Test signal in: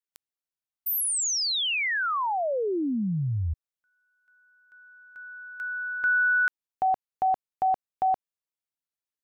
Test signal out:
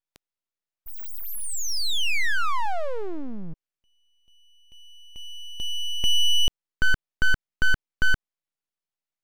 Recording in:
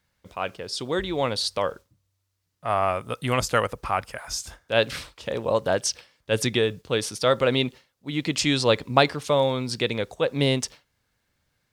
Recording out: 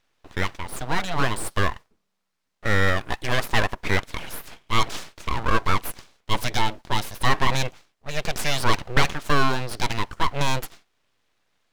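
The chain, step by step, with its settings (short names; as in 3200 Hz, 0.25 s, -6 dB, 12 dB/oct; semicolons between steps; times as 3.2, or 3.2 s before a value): overdrive pedal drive 17 dB, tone 1300 Hz, clips at -2.5 dBFS; full-wave rectifier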